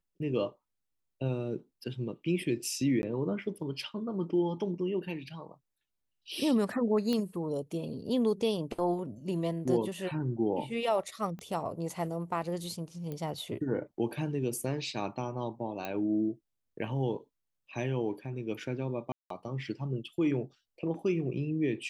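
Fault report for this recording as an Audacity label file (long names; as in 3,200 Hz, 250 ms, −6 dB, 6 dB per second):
3.020000	3.030000	drop-out 11 ms
7.130000	7.130000	click −19 dBFS
11.390000	11.390000	click −31 dBFS
13.120000	13.120000	click −26 dBFS
15.850000	15.850000	click −21 dBFS
19.120000	19.300000	drop-out 183 ms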